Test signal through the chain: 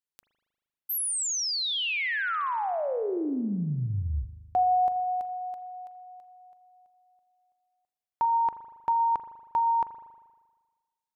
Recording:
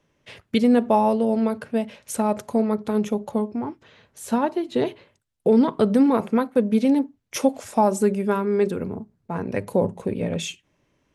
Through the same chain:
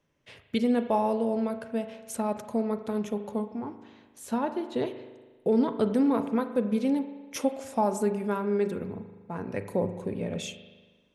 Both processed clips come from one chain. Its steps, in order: spring tank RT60 1.4 s, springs 39 ms, chirp 35 ms, DRR 9.5 dB; gain -7 dB

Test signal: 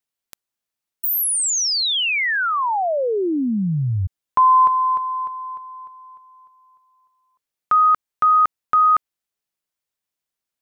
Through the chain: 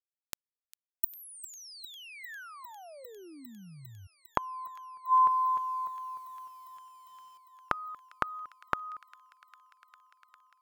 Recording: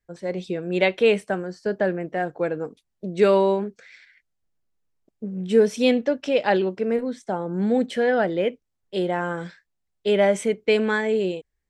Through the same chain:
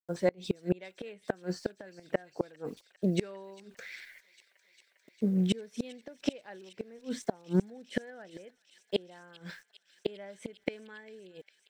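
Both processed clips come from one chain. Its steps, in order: dynamic EQ 1700 Hz, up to +5 dB, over -38 dBFS, Q 3.5; bit-crush 11-bit; flipped gate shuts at -18 dBFS, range -31 dB; thin delay 0.402 s, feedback 84%, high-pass 2500 Hz, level -16 dB; gain +3 dB

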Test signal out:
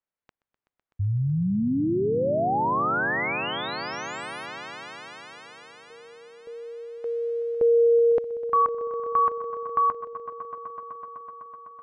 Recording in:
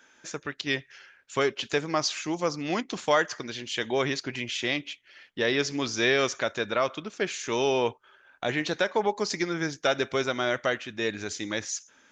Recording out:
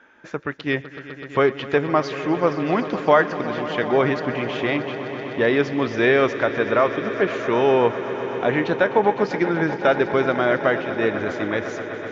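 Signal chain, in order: LPF 1800 Hz 12 dB/oct; on a send: swelling echo 0.126 s, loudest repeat 5, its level -16 dB; on the sum: gain +8 dB

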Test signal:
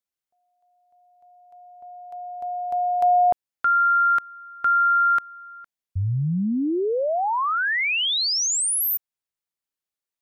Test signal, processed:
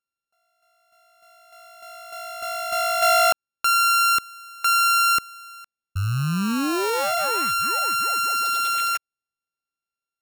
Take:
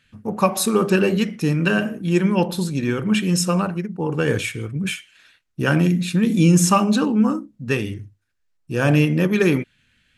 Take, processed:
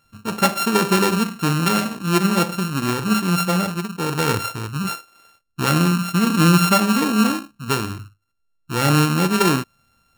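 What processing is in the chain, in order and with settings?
sample sorter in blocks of 32 samples

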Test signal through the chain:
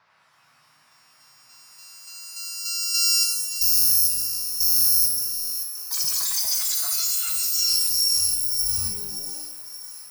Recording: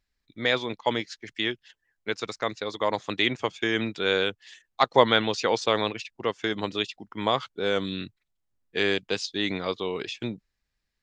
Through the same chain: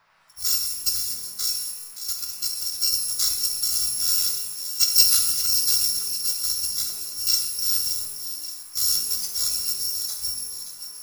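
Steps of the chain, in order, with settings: FFT order left unsorted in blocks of 256 samples; on a send: thin delay 0.574 s, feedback 50%, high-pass 1900 Hz, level -10 dB; on the sum: band noise 140–2200 Hz -51 dBFS; EQ curve 140 Hz 0 dB, 260 Hz -27 dB, 1100 Hz -1 dB, 1900 Hz -7 dB, 3100 Hz -7 dB, 5200 Hz +14 dB, 8000 Hz +6 dB; shimmer reverb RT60 1 s, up +12 st, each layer -2 dB, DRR 3 dB; gain -7 dB

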